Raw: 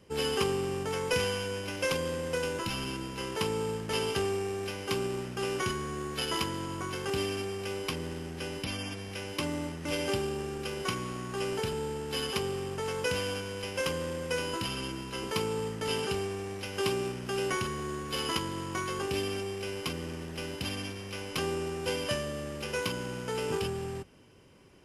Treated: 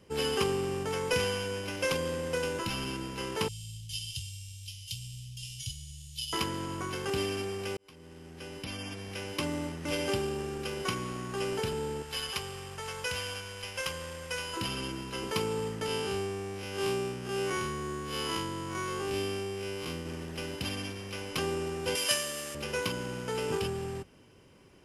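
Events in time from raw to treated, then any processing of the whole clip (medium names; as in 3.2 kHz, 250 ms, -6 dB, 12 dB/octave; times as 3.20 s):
3.48–6.33 s: Chebyshev band-stop 130–3100 Hz, order 4
7.77–9.20 s: fade in
12.02–14.57 s: peaking EQ 280 Hz -14 dB 1.9 oct
15.86–20.06 s: spectral blur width 89 ms
21.95–22.55 s: tilt EQ +4 dB/octave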